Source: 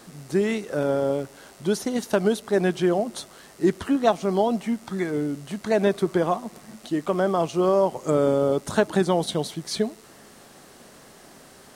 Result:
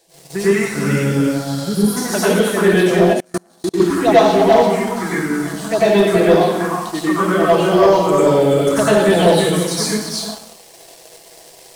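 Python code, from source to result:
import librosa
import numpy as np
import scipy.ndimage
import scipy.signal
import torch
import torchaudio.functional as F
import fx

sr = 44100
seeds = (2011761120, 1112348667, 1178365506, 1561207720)

y = fx.low_shelf(x, sr, hz=250.0, db=-10.5)
y = y + 0.35 * np.pad(y, (int(6.1 * sr / 1000.0), 0))[:len(y)]
y = y + 10.0 ** (-5.5 / 20.0) * np.pad(y, (int(335 * sr / 1000.0), 0))[:len(y)]
y = fx.env_phaser(y, sr, low_hz=210.0, high_hz=2300.0, full_db=-16.5)
y = fx.graphic_eq(y, sr, hz=(125, 250, 1000, 4000), db=(7, 5, -11, 9), at=(0.76, 1.81))
y = fx.rev_plate(y, sr, seeds[0], rt60_s=0.79, hf_ratio=1.0, predelay_ms=80, drr_db=-9.0)
y = fx.spec_repair(y, sr, seeds[1], start_s=1.58, length_s=0.36, low_hz=1200.0, high_hz=9300.0, source='before')
y = fx.level_steps(y, sr, step_db=23, at=(3.13, 3.8))
y = fx.leveller(y, sr, passes=2)
y = y * librosa.db_to_amplitude(-2.0)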